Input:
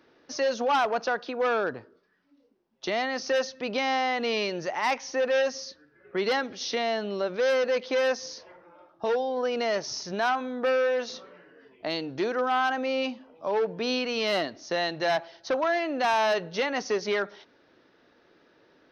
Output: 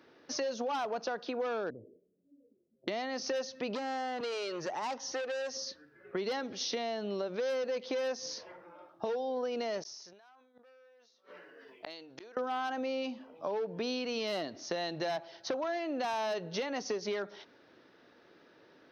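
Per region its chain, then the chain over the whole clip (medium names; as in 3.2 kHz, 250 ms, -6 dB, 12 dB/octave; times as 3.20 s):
1.70–2.88 s: steep low-pass 580 Hz 48 dB/octave + compression 2:1, threshold -44 dBFS
3.75–5.67 s: LFO notch square 1.1 Hz 210–2300 Hz + transformer saturation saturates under 1.7 kHz
9.82–12.37 s: tone controls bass -12 dB, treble +4 dB + inverted gate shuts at -29 dBFS, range -36 dB + decay stretcher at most 47 dB/s
whole clip: high-pass 76 Hz; dynamic bell 1.7 kHz, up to -6 dB, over -39 dBFS, Q 0.71; compression, threshold -32 dBFS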